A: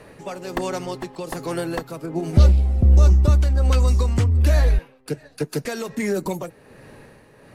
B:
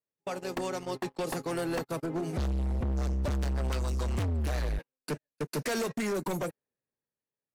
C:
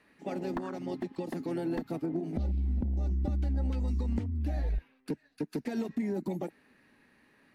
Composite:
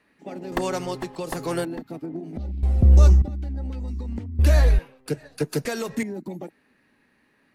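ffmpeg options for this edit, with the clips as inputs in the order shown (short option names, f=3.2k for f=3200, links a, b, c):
-filter_complex "[0:a]asplit=3[a][b][c];[2:a]asplit=4[d][e][f][g];[d]atrim=end=0.522[h];[a]atrim=start=0.518:end=1.652[i];[e]atrim=start=1.648:end=2.632[j];[b]atrim=start=2.628:end=3.222[k];[f]atrim=start=3.218:end=4.392[l];[c]atrim=start=4.388:end=6.032[m];[g]atrim=start=6.028[n];[h][i]acrossfade=d=0.004:c1=hsin:c2=hsin[o];[o][j]acrossfade=d=0.004:c1=hsin:c2=hsin[p];[p][k]acrossfade=d=0.004:c1=hsin:c2=hsin[q];[q][l]acrossfade=d=0.004:c1=hsin:c2=hsin[r];[r][m]acrossfade=d=0.004:c1=hsin:c2=hsin[s];[s][n]acrossfade=d=0.004:c1=hsin:c2=hsin"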